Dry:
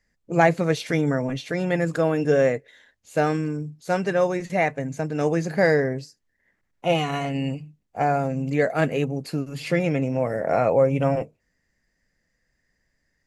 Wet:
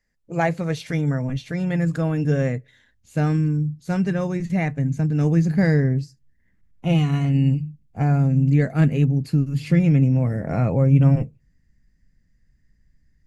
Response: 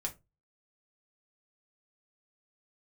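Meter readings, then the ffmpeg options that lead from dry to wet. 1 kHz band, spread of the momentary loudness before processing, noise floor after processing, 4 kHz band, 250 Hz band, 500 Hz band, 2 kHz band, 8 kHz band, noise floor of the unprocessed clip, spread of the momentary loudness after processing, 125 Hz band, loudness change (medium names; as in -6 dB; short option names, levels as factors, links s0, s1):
-6.5 dB, 10 LU, -64 dBFS, -4.0 dB, +5.0 dB, -6.5 dB, -4.5 dB, no reading, -74 dBFS, 9 LU, +10.0 dB, +2.5 dB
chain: -filter_complex "[0:a]asubboost=boost=10.5:cutoff=180,asplit=2[s0][s1];[1:a]atrim=start_sample=2205[s2];[s1][s2]afir=irnorm=-1:irlink=0,volume=0.1[s3];[s0][s3]amix=inputs=2:normalize=0,volume=0.596"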